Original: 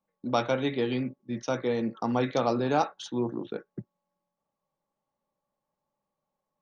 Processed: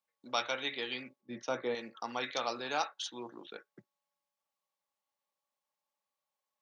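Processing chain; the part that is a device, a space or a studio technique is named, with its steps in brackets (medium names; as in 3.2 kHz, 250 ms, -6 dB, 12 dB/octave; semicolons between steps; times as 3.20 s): filter by subtraction (in parallel: low-pass 2.9 kHz 12 dB/octave + polarity flip); 1.21–1.75 s: on the sum: tilt shelf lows +8.5 dB, about 1.4 kHz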